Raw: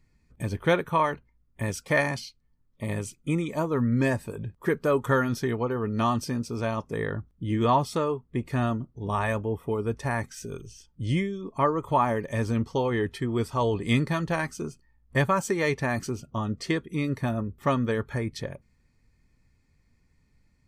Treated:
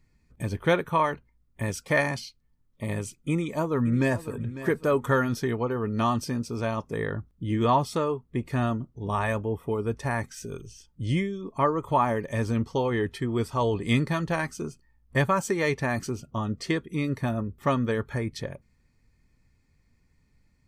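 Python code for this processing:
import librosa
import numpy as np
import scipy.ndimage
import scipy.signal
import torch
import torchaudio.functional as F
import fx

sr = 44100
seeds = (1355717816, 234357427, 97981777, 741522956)

y = fx.echo_throw(x, sr, start_s=3.3, length_s=1.09, ms=550, feedback_pct=25, wet_db=-14.0)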